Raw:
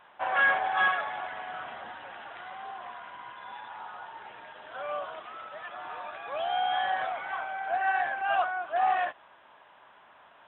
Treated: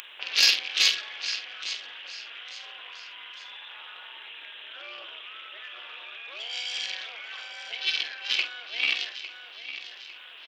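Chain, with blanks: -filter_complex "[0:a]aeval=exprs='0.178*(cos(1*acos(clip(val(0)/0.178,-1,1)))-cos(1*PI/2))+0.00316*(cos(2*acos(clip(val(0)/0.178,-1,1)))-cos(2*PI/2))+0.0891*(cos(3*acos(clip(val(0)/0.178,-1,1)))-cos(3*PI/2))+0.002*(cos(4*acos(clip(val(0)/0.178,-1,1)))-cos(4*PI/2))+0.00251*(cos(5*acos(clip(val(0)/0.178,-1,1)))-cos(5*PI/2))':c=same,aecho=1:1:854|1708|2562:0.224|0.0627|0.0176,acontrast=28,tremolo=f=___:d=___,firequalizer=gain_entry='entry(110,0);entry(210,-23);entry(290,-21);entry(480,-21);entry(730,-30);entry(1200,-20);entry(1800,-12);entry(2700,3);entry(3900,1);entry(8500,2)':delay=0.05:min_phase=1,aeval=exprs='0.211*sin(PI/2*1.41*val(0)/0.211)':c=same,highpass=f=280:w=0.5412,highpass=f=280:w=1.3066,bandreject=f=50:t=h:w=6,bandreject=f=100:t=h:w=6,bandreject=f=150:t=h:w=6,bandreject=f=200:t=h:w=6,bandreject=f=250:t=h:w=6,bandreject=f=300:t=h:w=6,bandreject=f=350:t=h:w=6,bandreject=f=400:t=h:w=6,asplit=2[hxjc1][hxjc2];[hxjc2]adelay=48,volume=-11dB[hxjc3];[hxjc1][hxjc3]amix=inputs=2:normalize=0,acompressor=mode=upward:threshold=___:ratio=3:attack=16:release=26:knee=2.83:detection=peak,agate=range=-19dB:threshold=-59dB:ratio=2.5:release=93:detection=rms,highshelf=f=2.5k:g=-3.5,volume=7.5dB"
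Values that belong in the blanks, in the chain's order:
230, 0.667, -48dB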